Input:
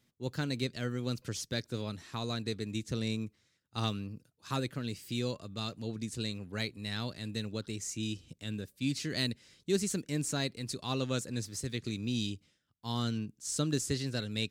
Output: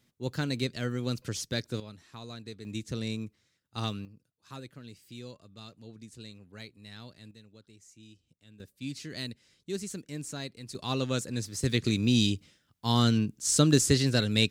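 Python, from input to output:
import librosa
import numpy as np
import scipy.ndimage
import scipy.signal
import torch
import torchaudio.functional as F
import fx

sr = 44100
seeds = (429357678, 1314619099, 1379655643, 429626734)

y = fx.gain(x, sr, db=fx.steps((0.0, 3.0), (1.8, -7.5), (2.65, 0.0), (4.05, -10.0), (7.31, -17.5), (8.6, -5.0), (10.75, 3.0), (11.63, 9.5)))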